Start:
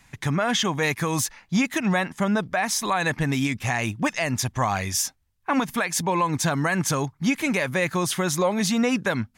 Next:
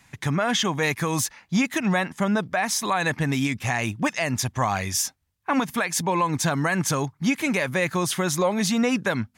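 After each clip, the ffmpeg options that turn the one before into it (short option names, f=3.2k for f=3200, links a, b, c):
-af "highpass=60"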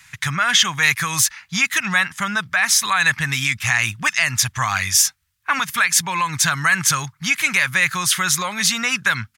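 -af "firequalizer=gain_entry='entry(130,0);entry(260,-13);entry(470,-14);entry(1300,9)':delay=0.05:min_phase=1,volume=1dB"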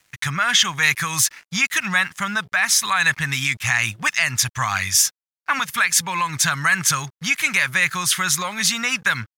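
-af "aeval=exprs='sgn(val(0))*max(abs(val(0))-0.00531,0)':c=same,volume=-1dB"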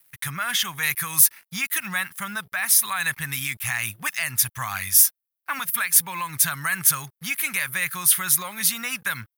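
-af "aexciter=amount=10.1:drive=3.3:freq=9.5k,volume=-7.5dB"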